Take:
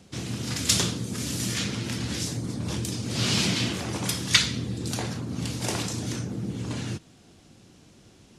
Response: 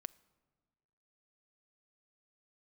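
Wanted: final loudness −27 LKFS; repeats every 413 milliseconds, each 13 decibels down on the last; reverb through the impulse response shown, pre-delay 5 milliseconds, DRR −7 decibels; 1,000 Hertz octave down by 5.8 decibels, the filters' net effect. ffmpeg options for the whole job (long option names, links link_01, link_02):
-filter_complex "[0:a]equalizer=frequency=1000:width_type=o:gain=-8,aecho=1:1:413|826|1239:0.224|0.0493|0.0108,asplit=2[link_01][link_02];[1:a]atrim=start_sample=2205,adelay=5[link_03];[link_02][link_03]afir=irnorm=-1:irlink=0,volume=11.5dB[link_04];[link_01][link_04]amix=inputs=2:normalize=0,volume=-7dB"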